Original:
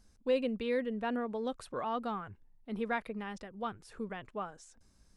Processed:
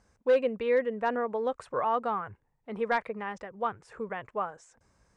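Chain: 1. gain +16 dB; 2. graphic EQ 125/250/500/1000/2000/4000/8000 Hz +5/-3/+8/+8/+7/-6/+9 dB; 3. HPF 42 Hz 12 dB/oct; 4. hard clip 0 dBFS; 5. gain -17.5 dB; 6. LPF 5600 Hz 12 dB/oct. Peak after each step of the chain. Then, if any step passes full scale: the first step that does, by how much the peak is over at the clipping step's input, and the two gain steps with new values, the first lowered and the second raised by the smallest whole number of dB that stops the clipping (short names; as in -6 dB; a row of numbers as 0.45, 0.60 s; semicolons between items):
-4.0, +4.5, +4.5, 0.0, -17.5, -17.0 dBFS; step 2, 4.5 dB; step 1 +11 dB, step 5 -12.5 dB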